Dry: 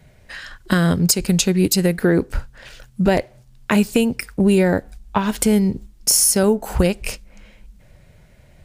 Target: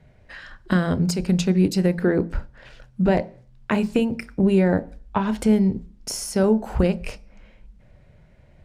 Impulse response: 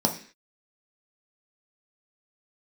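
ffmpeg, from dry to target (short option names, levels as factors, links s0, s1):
-filter_complex "[0:a]aemphasis=mode=reproduction:type=75fm,asplit=2[s0][s1];[1:a]atrim=start_sample=2205,adelay=28[s2];[s1][s2]afir=irnorm=-1:irlink=0,volume=0.0501[s3];[s0][s3]amix=inputs=2:normalize=0,volume=0.631"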